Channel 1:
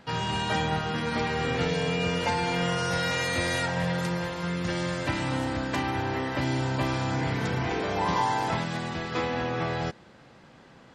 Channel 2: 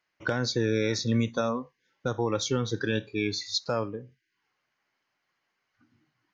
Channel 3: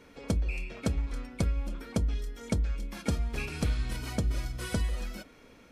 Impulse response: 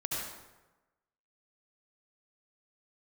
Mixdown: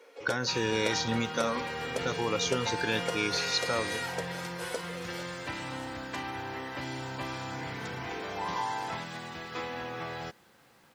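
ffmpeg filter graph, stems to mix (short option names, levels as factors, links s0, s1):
-filter_complex "[0:a]acrusher=bits=9:mix=0:aa=0.000001,adelay=400,volume=0.531[s0];[1:a]acrossover=split=3600[s1][s2];[s2]acompressor=threshold=0.0141:ratio=4:attack=1:release=60[s3];[s1][s3]amix=inputs=2:normalize=0,aemphasis=mode=production:type=cd,volume=1.06[s4];[2:a]highpass=f=490:t=q:w=3.5,volume=0.841[s5];[s0][s4][s5]amix=inputs=3:normalize=0,lowshelf=f=370:g=-8.5,bandreject=f=620:w=12"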